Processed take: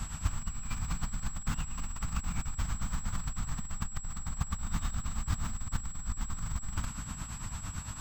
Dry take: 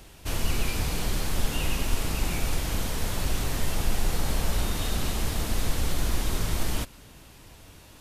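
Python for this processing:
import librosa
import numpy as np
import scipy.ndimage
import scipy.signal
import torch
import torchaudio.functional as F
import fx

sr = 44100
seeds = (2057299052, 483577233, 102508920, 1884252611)

y = fx.tracing_dist(x, sr, depth_ms=0.12)
y = fx.over_compress(y, sr, threshold_db=-35.0, ratio=-1.0)
y = fx.tremolo_shape(y, sr, shape='triangle', hz=8.9, depth_pct=80)
y = y + 10.0 ** (-39.0 / 20.0) * np.sin(2.0 * np.pi * 7700.0 * np.arange(len(y)) / sr)
y = fx.curve_eq(y, sr, hz=(210.0, 420.0, 1200.0, 1800.0, 2800.0, 6000.0, 9800.0), db=(0, -23, 2, -6, -10, -8, -15))
y = F.gain(torch.from_numpy(y), 5.5).numpy()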